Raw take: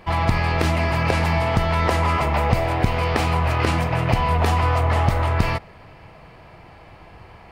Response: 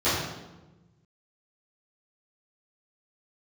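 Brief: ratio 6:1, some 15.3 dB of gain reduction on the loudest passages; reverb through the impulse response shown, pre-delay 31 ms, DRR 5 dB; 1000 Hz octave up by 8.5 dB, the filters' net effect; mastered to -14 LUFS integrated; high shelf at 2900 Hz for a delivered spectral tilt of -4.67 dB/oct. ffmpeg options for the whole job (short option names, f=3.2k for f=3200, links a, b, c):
-filter_complex "[0:a]equalizer=f=1k:t=o:g=9,highshelf=f=2.9k:g=8,acompressor=threshold=-28dB:ratio=6,asplit=2[a][b];[1:a]atrim=start_sample=2205,adelay=31[c];[b][c]afir=irnorm=-1:irlink=0,volume=-21dB[d];[a][d]amix=inputs=2:normalize=0,volume=14.5dB"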